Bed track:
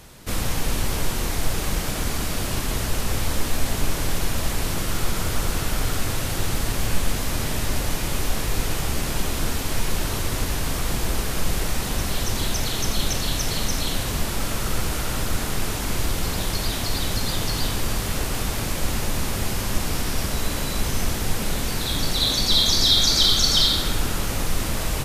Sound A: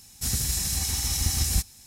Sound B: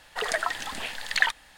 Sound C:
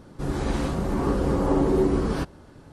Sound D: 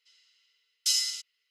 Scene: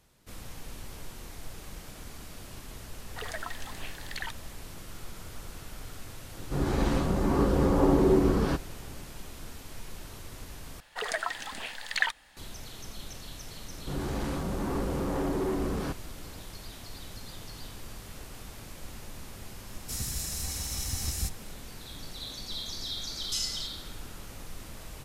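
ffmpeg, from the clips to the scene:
ffmpeg -i bed.wav -i cue0.wav -i cue1.wav -i cue2.wav -i cue3.wav -filter_complex "[2:a]asplit=2[link_01][link_02];[3:a]asplit=2[link_03][link_04];[0:a]volume=-19dB[link_05];[link_01]alimiter=limit=-13.5dB:level=0:latency=1:release=71[link_06];[link_03]lowpass=8300[link_07];[link_04]asoftclip=type=tanh:threshold=-23dB[link_08];[link_05]asplit=2[link_09][link_10];[link_09]atrim=end=10.804[link_11];[link_02]atrim=end=1.57,asetpts=PTS-STARTPTS,volume=-4.5dB[link_12];[link_10]atrim=start=12.366[link_13];[link_06]atrim=end=1.57,asetpts=PTS-STARTPTS,volume=-10dB,afade=type=in:duration=0.004:curve=hsin,afade=type=out:start_time=1.566:duration=0.004:curve=hsin,adelay=3000[link_14];[link_07]atrim=end=2.72,asetpts=PTS-STARTPTS,volume=-1dB,afade=type=in:duration=0.004:curve=hsin,afade=type=out:start_time=2.716:duration=0.004:curve=hsin,adelay=6320[link_15];[link_08]atrim=end=2.72,asetpts=PTS-STARTPTS,volume=-3.5dB,afade=type=in:duration=0.004:curve=hsin,afade=type=out:start_time=2.716:duration=0.004:curve=hsin,adelay=13680[link_16];[1:a]atrim=end=1.86,asetpts=PTS-STARTPTS,volume=-8dB,afade=type=in:duration=0.004:curve=hsin,afade=type=out:start_time=1.856:duration=0.004:curve=hsin,adelay=19670[link_17];[4:a]atrim=end=1.5,asetpts=PTS-STARTPTS,volume=-7dB,afade=type=in:duration=0.004:curve=hsin,afade=type=out:start_time=1.496:duration=0.004:curve=hsin,adelay=22460[link_18];[link_11][link_12]acrossfade=duration=0.004:curve1=hsin:curve2=hsin[link_19];[link_19][link_13]acrossfade=duration=0.004:curve1=hsin:curve2=hsin[link_20];[link_20][link_14][link_15][link_16][link_17][link_18]amix=inputs=6:normalize=0" out.wav

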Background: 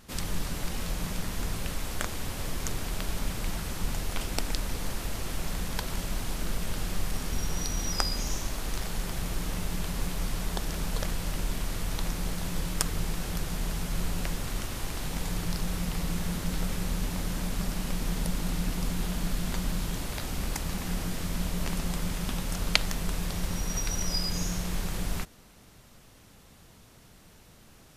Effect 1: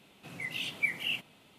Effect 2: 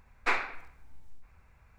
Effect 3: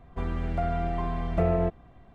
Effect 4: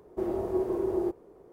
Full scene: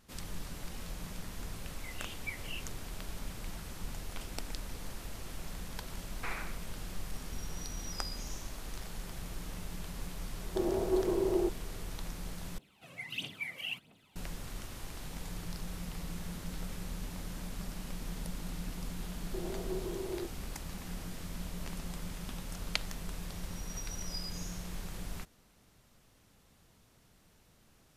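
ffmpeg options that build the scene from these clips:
ffmpeg -i bed.wav -i cue0.wav -i cue1.wav -i cue2.wav -i cue3.wav -filter_complex "[1:a]asplit=2[link_01][link_02];[4:a]asplit=2[link_03][link_04];[0:a]volume=-10dB[link_05];[2:a]alimiter=limit=-24dB:level=0:latency=1:release=71[link_06];[link_02]aphaser=in_gain=1:out_gain=1:delay=1.9:decay=0.65:speed=1.5:type=triangular[link_07];[link_05]asplit=2[link_08][link_09];[link_08]atrim=end=12.584[link_10];[link_07]atrim=end=1.58,asetpts=PTS-STARTPTS,volume=-7dB[link_11];[link_09]atrim=start=14.156[link_12];[link_01]atrim=end=1.58,asetpts=PTS-STARTPTS,volume=-11.5dB,afade=type=in:duration=0.004:curve=hsin,afade=type=out:start_time=1.576:duration=0.004:curve=hsin,adelay=1440[link_13];[link_06]atrim=end=1.78,asetpts=PTS-STARTPTS,volume=-5dB,afade=type=in:duration=0.004:curve=hsin,afade=type=out:start_time=1.776:duration=0.004:curve=hsin,adelay=5970[link_14];[link_03]atrim=end=1.52,asetpts=PTS-STARTPTS,volume=-1.5dB,afade=type=in:duration=0.004:curve=hsin,afade=type=out:start_time=1.516:duration=0.004:curve=hsin,adelay=10380[link_15];[link_04]atrim=end=1.52,asetpts=PTS-STARTPTS,volume=-10.5dB,afade=type=in:duration=0.004:curve=hsin,afade=type=out:start_time=1.516:duration=0.004:curve=hsin,adelay=19160[link_16];[link_10][link_11]acrossfade=duration=0.004:curve1=hsin:curve2=hsin[link_17];[link_17][link_12]acrossfade=duration=0.004:curve1=hsin:curve2=hsin[link_18];[link_18][link_13][link_14][link_15][link_16]amix=inputs=5:normalize=0" out.wav

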